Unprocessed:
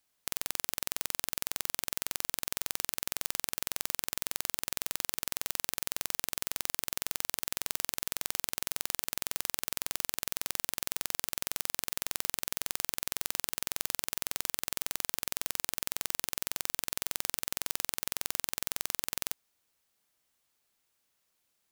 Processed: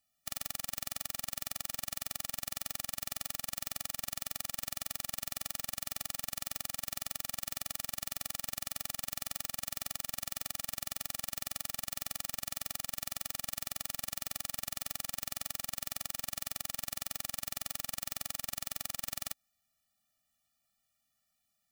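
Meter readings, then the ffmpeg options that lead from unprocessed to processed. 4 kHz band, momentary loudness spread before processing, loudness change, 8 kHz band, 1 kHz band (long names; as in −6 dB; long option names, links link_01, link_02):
−3.5 dB, 1 LU, −3.5 dB, −3.5 dB, −3.0 dB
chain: -af "afftfilt=real='re*eq(mod(floor(b*sr/1024/280),2),0)':imag='im*eq(mod(floor(b*sr/1024/280),2),0)':win_size=1024:overlap=0.75"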